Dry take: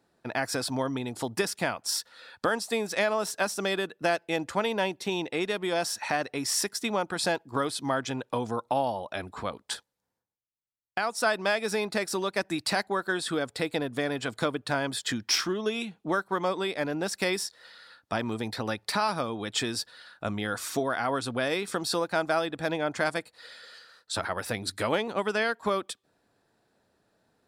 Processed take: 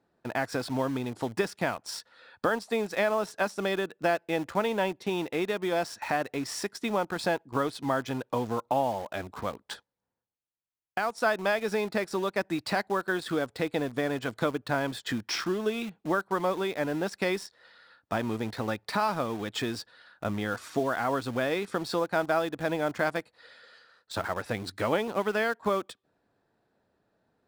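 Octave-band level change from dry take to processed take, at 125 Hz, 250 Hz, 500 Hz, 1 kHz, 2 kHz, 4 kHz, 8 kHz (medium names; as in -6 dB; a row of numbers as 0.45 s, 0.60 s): +0.5 dB, +0.5 dB, +0.5 dB, 0.0 dB, -1.5 dB, -6.0 dB, -9.0 dB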